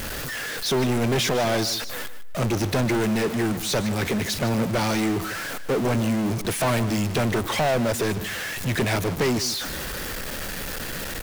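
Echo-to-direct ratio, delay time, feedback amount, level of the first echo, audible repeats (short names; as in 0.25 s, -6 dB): -13.5 dB, 0.151 s, 19%, -13.5 dB, 2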